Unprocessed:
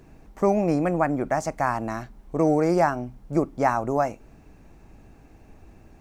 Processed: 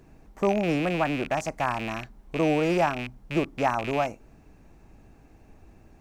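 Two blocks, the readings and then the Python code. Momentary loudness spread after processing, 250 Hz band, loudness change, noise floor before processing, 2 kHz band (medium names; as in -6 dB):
8 LU, -3.0 dB, -2.5 dB, -52 dBFS, +1.5 dB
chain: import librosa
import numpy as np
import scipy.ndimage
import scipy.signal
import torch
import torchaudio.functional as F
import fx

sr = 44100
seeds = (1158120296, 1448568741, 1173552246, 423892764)

y = fx.rattle_buzz(x, sr, strikes_db=-35.0, level_db=-20.0)
y = y * librosa.db_to_amplitude(-3.0)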